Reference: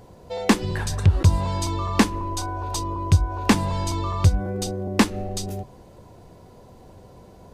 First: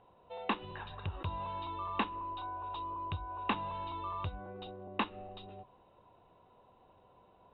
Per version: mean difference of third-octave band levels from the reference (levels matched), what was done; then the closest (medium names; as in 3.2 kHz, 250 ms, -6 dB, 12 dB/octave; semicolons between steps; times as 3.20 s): 6.0 dB: rippled Chebyshev low-pass 3.9 kHz, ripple 9 dB; bass shelf 310 Hz -8 dB; trim -7 dB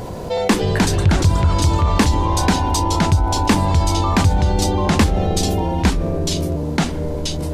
9.0 dB: ever faster or slower copies 245 ms, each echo -2 st, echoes 2; level flattener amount 50%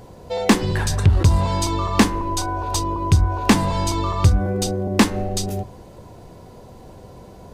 2.0 dB: de-hum 91.3 Hz, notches 23; in parallel at -4.5 dB: hard clipper -21 dBFS, distortion -5 dB; on the sum: trim +1.5 dB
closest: third